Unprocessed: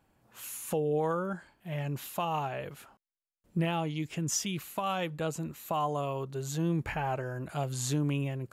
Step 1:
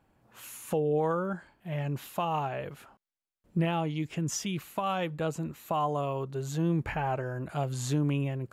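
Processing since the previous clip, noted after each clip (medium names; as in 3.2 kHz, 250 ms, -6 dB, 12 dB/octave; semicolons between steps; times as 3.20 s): treble shelf 3.6 kHz -7 dB; trim +2 dB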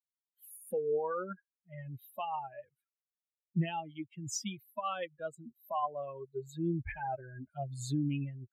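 expander on every frequency bin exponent 3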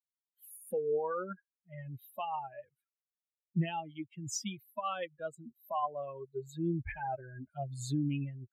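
no audible change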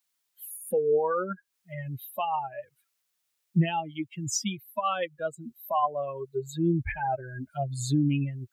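tape noise reduction on one side only encoder only; trim +8 dB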